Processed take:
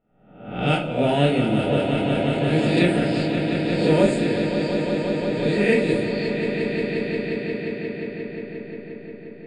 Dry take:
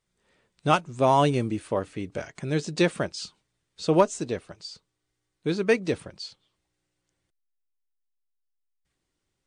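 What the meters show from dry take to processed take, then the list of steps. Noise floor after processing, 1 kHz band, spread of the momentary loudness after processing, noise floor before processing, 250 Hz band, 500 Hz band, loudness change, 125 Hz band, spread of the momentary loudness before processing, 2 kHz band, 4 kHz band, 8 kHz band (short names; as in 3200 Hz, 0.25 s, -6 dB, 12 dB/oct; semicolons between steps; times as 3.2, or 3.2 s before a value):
-42 dBFS, -1.5 dB, 14 LU, -80 dBFS, +9.0 dB, +6.0 dB, +4.0 dB, +7.5 dB, 18 LU, +7.5 dB, +6.0 dB, -3.5 dB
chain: spectral swells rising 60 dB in 0.75 s; fixed phaser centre 2600 Hz, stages 4; on a send: swelling echo 0.177 s, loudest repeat 5, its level -9 dB; on the sum: low-pass opened by the level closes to 1300 Hz, open at -18.5 dBFS; shoebox room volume 330 m³, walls furnished, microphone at 1.8 m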